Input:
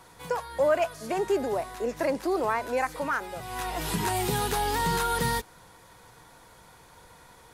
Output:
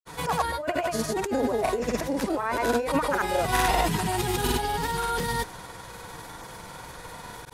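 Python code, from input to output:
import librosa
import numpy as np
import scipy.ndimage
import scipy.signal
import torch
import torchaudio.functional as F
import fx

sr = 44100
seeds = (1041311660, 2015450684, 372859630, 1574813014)

y = fx.over_compress(x, sr, threshold_db=-33.0, ratio=-1.0)
y = fx.granulator(y, sr, seeds[0], grain_ms=100.0, per_s=20.0, spray_ms=100.0, spread_st=0)
y = y * 10.0 ** (8.0 / 20.0)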